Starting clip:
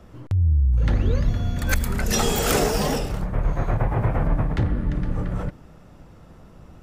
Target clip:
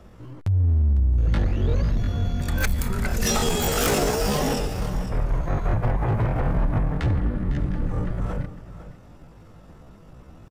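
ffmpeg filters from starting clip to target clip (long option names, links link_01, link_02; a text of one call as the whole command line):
ffmpeg -i in.wav -af "asoftclip=type=hard:threshold=-16dB,atempo=0.65,aecho=1:1:503:0.2" out.wav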